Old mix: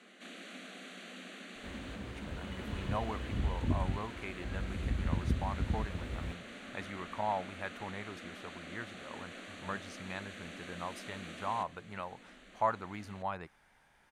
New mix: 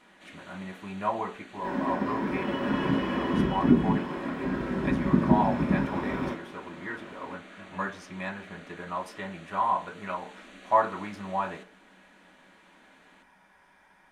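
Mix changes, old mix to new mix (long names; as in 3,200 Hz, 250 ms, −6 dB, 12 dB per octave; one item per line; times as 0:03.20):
speech: entry −1.90 s
first sound −4.0 dB
reverb: on, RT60 0.35 s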